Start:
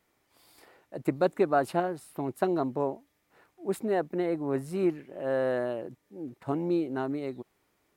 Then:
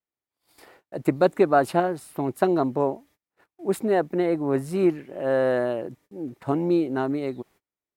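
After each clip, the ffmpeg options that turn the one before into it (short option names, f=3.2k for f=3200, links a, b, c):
-af "agate=range=-30dB:threshold=-58dB:ratio=16:detection=peak,volume=6dB"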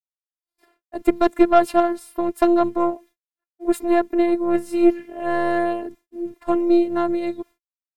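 -af "aeval=exprs='0.562*(cos(1*acos(clip(val(0)/0.562,-1,1)))-cos(1*PI/2))+0.0355*(cos(6*acos(clip(val(0)/0.562,-1,1)))-cos(6*PI/2))':c=same,agate=range=-33dB:threshold=-41dB:ratio=3:detection=peak,afftfilt=real='hypot(re,im)*cos(PI*b)':imag='0':win_size=512:overlap=0.75,volume=6dB"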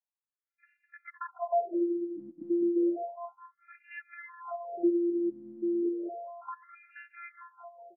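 -af "acompressor=threshold=-28dB:ratio=2.5,aecho=1:1:206|412|618|824|1030|1236|1442:0.422|0.236|0.132|0.0741|0.0415|0.0232|0.013,afftfilt=real='re*between(b*sr/1024,230*pow(2000/230,0.5+0.5*sin(2*PI*0.32*pts/sr))/1.41,230*pow(2000/230,0.5+0.5*sin(2*PI*0.32*pts/sr))*1.41)':imag='im*between(b*sr/1024,230*pow(2000/230,0.5+0.5*sin(2*PI*0.32*pts/sr))/1.41,230*pow(2000/230,0.5+0.5*sin(2*PI*0.32*pts/sr))*1.41)':win_size=1024:overlap=0.75"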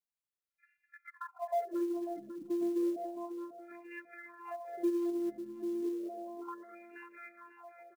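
-filter_complex "[0:a]aecho=1:1:544|1088|1632|2176:0.266|0.0905|0.0308|0.0105,asplit=2[a][b];[b]asoftclip=type=tanh:threshold=-29dB,volume=-10dB[c];[a][c]amix=inputs=2:normalize=0,acrusher=bits=7:mode=log:mix=0:aa=0.000001,volume=-6.5dB"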